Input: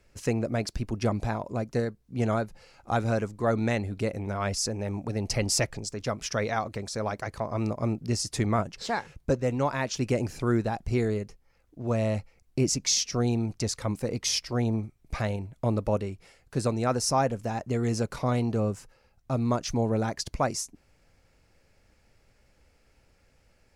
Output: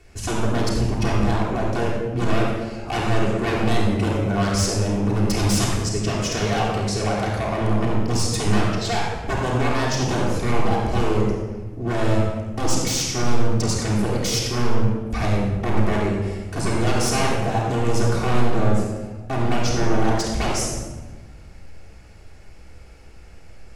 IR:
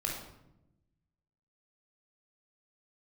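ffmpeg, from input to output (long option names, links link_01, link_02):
-filter_complex "[0:a]asplit=2[link_01][link_02];[link_02]acompressor=threshold=-42dB:ratio=6,volume=2.5dB[link_03];[link_01][link_03]amix=inputs=2:normalize=0,aeval=exprs='0.0668*(abs(mod(val(0)/0.0668+3,4)-2)-1)':channel_layout=same[link_04];[1:a]atrim=start_sample=2205,asetrate=25578,aresample=44100[link_05];[link_04][link_05]afir=irnorm=-1:irlink=0"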